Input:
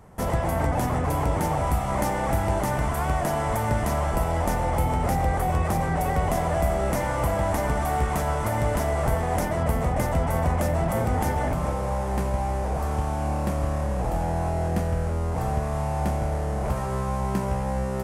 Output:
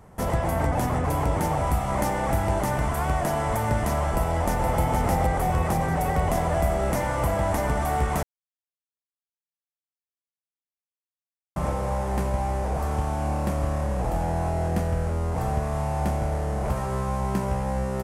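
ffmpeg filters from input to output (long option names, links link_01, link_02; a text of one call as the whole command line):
ffmpeg -i in.wav -filter_complex "[0:a]asplit=2[link_01][link_02];[link_02]afade=type=in:start_time=4.12:duration=0.01,afade=type=out:start_time=4.79:duration=0.01,aecho=0:1:470|940|1410|1880|2350|2820|3290|3760|4230:0.595662|0.357397|0.214438|0.128663|0.0771978|0.0463187|0.0277912|0.0166747|0.0100048[link_03];[link_01][link_03]amix=inputs=2:normalize=0,asplit=3[link_04][link_05][link_06];[link_04]atrim=end=8.23,asetpts=PTS-STARTPTS,afade=type=out:start_time=8.226:duration=0.004:curve=hsin[link_07];[link_05]atrim=start=8.23:end=11.56,asetpts=PTS-STARTPTS,volume=0[link_08];[link_06]atrim=start=11.56,asetpts=PTS-STARTPTS,afade=type=in:duration=0.004:curve=hsin[link_09];[link_07][link_08][link_09]concat=n=3:v=0:a=1" out.wav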